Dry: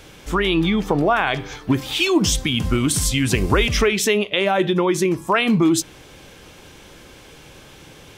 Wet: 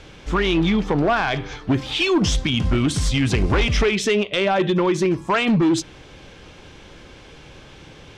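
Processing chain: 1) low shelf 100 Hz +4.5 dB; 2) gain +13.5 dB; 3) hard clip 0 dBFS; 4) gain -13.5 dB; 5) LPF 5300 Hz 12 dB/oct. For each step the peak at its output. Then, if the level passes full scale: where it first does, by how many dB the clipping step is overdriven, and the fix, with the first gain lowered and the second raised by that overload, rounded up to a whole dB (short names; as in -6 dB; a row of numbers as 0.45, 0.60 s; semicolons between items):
-3.5, +10.0, 0.0, -13.5, -12.5 dBFS; step 2, 10.0 dB; step 2 +3.5 dB, step 4 -3.5 dB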